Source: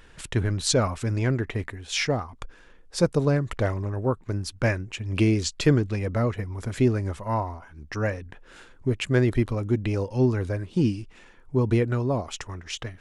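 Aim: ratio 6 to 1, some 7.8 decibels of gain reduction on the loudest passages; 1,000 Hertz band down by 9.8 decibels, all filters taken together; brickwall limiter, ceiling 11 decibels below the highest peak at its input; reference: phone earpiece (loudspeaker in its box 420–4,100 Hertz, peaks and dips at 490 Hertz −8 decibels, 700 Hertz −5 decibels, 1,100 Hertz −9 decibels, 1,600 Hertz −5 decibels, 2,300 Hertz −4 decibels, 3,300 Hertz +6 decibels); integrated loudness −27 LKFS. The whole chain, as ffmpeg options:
ffmpeg -i in.wav -af "equalizer=frequency=1000:width_type=o:gain=-5,acompressor=threshold=-24dB:ratio=6,alimiter=limit=-21.5dB:level=0:latency=1,highpass=420,equalizer=frequency=490:width_type=q:width=4:gain=-8,equalizer=frequency=700:width_type=q:width=4:gain=-5,equalizer=frequency=1100:width_type=q:width=4:gain=-9,equalizer=frequency=1600:width_type=q:width=4:gain=-5,equalizer=frequency=2300:width_type=q:width=4:gain=-4,equalizer=frequency=3300:width_type=q:width=4:gain=6,lowpass=frequency=4100:width=0.5412,lowpass=frequency=4100:width=1.3066,volume=13.5dB" out.wav

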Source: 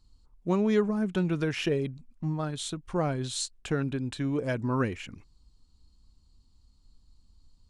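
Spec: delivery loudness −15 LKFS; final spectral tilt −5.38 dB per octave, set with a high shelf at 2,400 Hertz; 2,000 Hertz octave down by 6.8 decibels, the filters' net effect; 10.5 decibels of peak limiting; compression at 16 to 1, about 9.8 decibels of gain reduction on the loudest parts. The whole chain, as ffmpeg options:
ffmpeg -i in.wav -af "equalizer=frequency=2000:width_type=o:gain=-7.5,highshelf=frequency=2400:gain=-4,acompressor=threshold=-30dB:ratio=16,volume=25.5dB,alimiter=limit=-6dB:level=0:latency=1" out.wav

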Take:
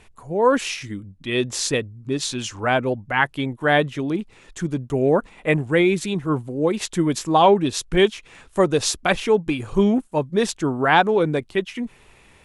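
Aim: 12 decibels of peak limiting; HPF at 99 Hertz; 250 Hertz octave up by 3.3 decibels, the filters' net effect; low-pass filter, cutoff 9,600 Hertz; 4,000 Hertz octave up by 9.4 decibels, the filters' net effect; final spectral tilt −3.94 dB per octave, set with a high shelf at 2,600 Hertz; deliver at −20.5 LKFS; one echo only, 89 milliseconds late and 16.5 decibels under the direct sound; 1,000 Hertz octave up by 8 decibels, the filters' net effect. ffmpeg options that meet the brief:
ffmpeg -i in.wav -af "highpass=99,lowpass=9600,equalizer=frequency=250:width_type=o:gain=4,equalizer=frequency=1000:width_type=o:gain=9,highshelf=frequency=2600:gain=4,equalizer=frequency=4000:width_type=o:gain=8,alimiter=limit=-7dB:level=0:latency=1,aecho=1:1:89:0.15,volume=-1dB" out.wav

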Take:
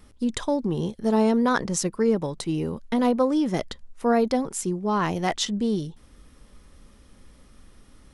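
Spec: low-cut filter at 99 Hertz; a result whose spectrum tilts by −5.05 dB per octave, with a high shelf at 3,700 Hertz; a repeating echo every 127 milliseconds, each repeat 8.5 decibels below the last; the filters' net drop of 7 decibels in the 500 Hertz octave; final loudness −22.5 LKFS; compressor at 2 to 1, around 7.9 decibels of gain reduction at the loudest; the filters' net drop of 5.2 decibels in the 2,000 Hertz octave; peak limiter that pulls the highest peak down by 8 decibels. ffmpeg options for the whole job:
ffmpeg -i in.wav -af "highpass=99,equalizer=frequency=500:width_type=o:gain=-8,equalizer=frequency=2000:width_type=o:gain=-7,highshelf=frequency=3700:gain=3,acompressor=threshold=-35dB:ratio=2,alimiter=level_in=1.5dB:limit=-24dB:level=0:latency=1,volume=-1.5dB,aecho=1:1:127|254|381|508:0.376|0.143|0.0543|0.0206,volume=12.5dB" out.wav

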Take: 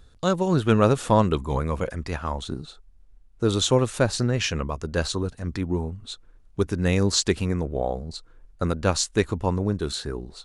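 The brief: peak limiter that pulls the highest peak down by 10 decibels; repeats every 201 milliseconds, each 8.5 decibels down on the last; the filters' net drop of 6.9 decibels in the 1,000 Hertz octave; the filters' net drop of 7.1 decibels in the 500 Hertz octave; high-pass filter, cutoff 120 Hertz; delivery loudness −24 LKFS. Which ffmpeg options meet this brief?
ffmpeg -i in.wav -af "highpass=120,equalizer=frequency=500:width_type=o:gain=-7.5,equalizer=frequency=1000:width_type=o:gain=-6.5,alimiter=limit=-18.5dB:level=0:latency=1,aecho=1:1:201|402|603|804:0.376|0.143|0.0543|0.0206,volume=6.5dB" out.wav

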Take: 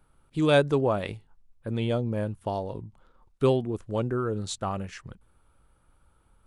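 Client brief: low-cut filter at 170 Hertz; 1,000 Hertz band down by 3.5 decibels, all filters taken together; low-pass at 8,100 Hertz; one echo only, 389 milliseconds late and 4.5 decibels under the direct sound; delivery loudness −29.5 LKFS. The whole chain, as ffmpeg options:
ffmpeg -i in.wav -af "highpass=170,lowpass=8100,equalizer=frequency=1000:width_type=o:gain=-5,aecho=1:1:389:0.596,volume=-0.5dB" out.wav

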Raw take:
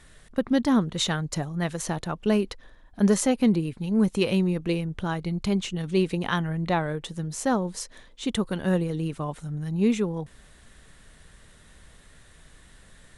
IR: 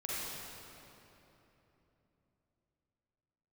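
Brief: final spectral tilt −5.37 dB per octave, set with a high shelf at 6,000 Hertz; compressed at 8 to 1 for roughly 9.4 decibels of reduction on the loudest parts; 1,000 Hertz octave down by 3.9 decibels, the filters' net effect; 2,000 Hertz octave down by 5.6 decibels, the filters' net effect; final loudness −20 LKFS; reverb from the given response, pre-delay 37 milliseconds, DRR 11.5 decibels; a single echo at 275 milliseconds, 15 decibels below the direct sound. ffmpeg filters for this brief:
-filter_complex "[0:a]equalizer=frequency=1000:width_type=o:gain=-4,equalizer=frequency=2000:width_type=o:gain=-6.5,highshelf=frequency=6000:gain=3.5,acompressor=threshold=-26dB:ratio=8,aecho=1:1:275:0.178,asplit=2[link_01][link_02];[1:a]atrim=start_sample=2205,adelay=37[link_03];[link_02][link_03]afir=irnorm=-1:irlink=0,volume=-15.5dB[link_04];[link_01][link_04]amix=inputs=2:normalize=0,volume=11.5dB"

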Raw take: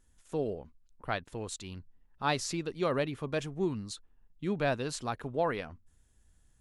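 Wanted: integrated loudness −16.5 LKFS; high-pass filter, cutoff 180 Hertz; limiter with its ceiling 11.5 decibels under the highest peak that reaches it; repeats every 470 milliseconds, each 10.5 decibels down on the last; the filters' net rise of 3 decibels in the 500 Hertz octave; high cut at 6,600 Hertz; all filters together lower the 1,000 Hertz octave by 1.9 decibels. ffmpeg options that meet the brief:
ffmpeg -i in.wav -af "highpass=180,lowpass=6600,equalizer=frequency=500:width_type=o:gain=5,equalizer=frequency=1000:width_type=o:gain=-5,alimiter=level_in=1dB:limit=-24dB:level=0:latency=1,volume=-1dB,aecho=1:1:470|940|1410:0.299|0.0896|0.0269,volume=21dB" out.wav

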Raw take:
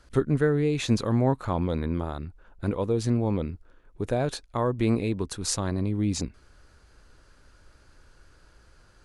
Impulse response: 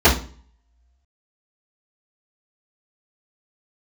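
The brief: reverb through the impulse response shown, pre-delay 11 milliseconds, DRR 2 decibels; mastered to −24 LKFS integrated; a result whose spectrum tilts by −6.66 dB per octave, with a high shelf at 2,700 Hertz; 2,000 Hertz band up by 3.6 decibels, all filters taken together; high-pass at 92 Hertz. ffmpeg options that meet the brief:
-filter_complex "[0:a]highpass=92,equalizer=frequency=2000:width_type=o:gain=3.5,highshelf=frequency=2700:gain=3,asplit=2[link_01][link_02];[1:a]atrim=start_sample=2205,adelay=11[link_03];[link_02][link_03]afir=irnorm=-1:irlink=0,volume=-26.5dB[link_04];[link_01][link_04]amix=inputs=2:normalize=0,volume=-0.5dB"

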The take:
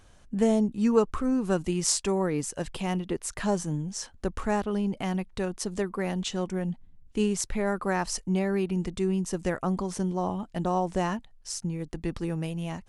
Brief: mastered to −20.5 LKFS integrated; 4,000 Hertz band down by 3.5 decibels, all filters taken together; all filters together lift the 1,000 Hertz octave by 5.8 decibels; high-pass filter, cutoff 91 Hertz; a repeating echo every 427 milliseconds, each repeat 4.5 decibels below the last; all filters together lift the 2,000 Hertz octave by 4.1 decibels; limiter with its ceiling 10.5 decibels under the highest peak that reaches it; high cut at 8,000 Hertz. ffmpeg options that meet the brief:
ffmpeg -i in.wav -af "highpass=91,lowpass=8000,equalizer=frequency=1000:width_type=o:gain=7,equalizer=frequency=2000:width_type=o:gain=4,equalizer=frequency=4000:width_type=o:gain=-6.5,alimiter=limit=-19dB:level=0:latency=1,aecho=1:1:427|854|1281|1708|2135|2562|2989|3416|3843:0.596|0.357|0.214|0.129|0.0772|0.0463|0.0278|0.0167|0.01,volume=8dB" out.wav

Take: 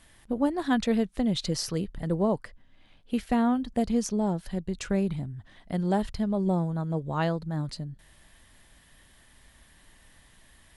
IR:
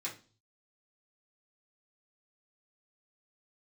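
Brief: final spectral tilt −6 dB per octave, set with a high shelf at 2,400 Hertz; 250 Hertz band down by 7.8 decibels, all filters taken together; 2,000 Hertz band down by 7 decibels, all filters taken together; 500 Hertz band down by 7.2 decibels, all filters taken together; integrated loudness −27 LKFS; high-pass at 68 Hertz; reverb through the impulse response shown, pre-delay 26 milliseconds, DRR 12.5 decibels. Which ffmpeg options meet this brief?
-filter_complex "[0:a]highpass=68,equalizer=frequency=250:width_type=o:gain=-9,equalizer=frequency=500:width_type=o:gain=-6,equalizer=frequency=2000:width_type=o:gain=-7,highshelf=frequency=2400:gain=-3.5,asplit=2[link_01][link_02];[1:a]atrim=start_sample=2205,adelay=26[link_03];[link_02][link_03]afir=irnorm=-1:irlink=0,volume=-13.5dB[link_04];[link_01][link_04]amix=inputs=2:normalize=0,volume=8dB"

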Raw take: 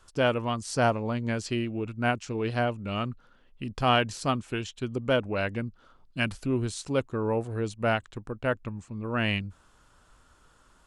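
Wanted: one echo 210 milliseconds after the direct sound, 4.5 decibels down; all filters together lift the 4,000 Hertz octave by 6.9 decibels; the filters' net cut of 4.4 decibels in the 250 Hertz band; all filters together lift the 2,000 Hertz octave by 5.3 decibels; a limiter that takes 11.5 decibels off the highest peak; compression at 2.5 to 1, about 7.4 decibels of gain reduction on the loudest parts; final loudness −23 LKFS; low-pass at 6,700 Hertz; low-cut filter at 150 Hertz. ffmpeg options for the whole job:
ffmpeg -i in.wav -af "highpass=150,lowpass=6700,equalizer=frequency=250:width_type=o:gain=-4.5,equalizer=frequency=2000:width_type=o:gain=5.5,equalizer=frequency=4000:width_type=o:gain=8,acompressor=threshold=-27dB:ratio=2.5,alimiter=limit=-23dB:level=0:latency=1,aecho=1:1:210:0.596,volume=12.5dB" out.wav

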